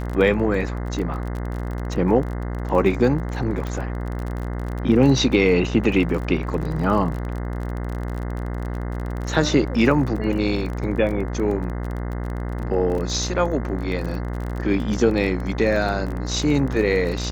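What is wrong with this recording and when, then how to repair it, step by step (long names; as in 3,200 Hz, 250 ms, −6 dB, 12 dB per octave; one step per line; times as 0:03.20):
mains buzz 60 Hz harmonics 35 −27 dBFS
surface crackle 29 per second −28 dBFS
0:03.67: click
0:12.98: drop-out 3.8 ms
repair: click removal
hum removal 60 Hz, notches 35
repair the gap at 0:12.98, 3.8 ms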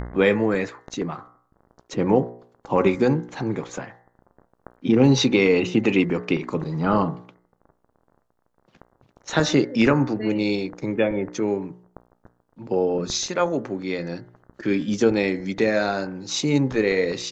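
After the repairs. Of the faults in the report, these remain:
none of them is left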